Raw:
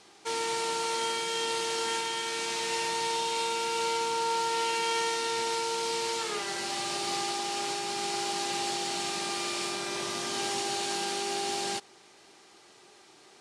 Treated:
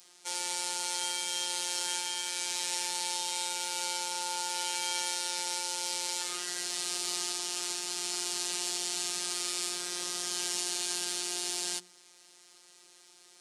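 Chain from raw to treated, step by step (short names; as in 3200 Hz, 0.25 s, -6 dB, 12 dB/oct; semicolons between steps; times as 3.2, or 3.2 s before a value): robotiser 177 Hz; pre-emphasis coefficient 0.8; notches 60/120/180/240/300/360 Hz; gain +6.5 dB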